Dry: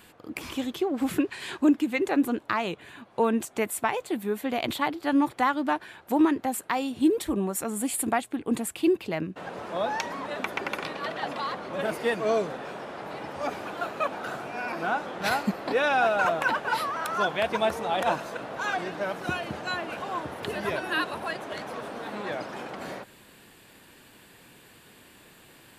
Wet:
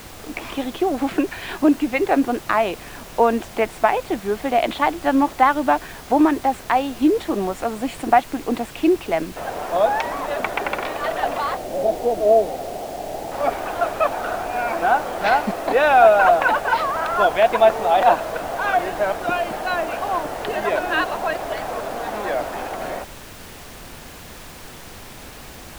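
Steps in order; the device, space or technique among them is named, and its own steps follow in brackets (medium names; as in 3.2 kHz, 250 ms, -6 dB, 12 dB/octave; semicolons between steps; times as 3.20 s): 11.57–13.32 s: elliptic band-pass 140–760 Hz; horn gramophone (band-pass 260–3200 Hz; peaking EQ 700 Hz +7.5 dB 0.46 oct; wow and flutter; pink noise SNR 18 dB); trim +6.5 dB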